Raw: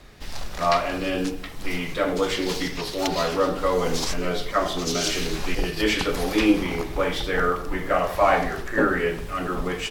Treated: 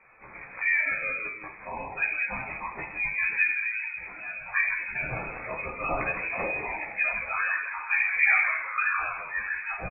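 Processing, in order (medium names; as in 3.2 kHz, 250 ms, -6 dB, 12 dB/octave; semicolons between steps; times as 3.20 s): steep high-pass 460 Hz 72 dB/octave; spectral gate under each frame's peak -15 dB strong; 3.49–4.53 s: compression, threshold -32 dBFS, peak gain reduction 12 dB; chorus voices 4, 0.36 Hz, delay 15 ms, depth 3.2 ms; frequency-shifting echo 164 ms, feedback 33%, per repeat +110 Hz, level -8 dB; on a send at -5 dB: reverberation RT60 0.50 s, pre-delay 3 ms; on the sum: frequency inversion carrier 3 kHz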